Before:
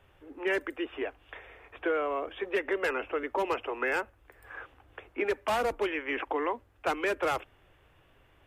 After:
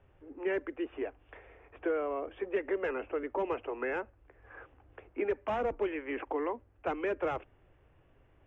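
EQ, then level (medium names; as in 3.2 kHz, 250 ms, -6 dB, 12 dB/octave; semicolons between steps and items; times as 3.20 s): boxcar filter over 10 samples; distance through air 100 m; peaking EQ 1.3 kHz -5.5 dB 1.9 oct; 0.0 dB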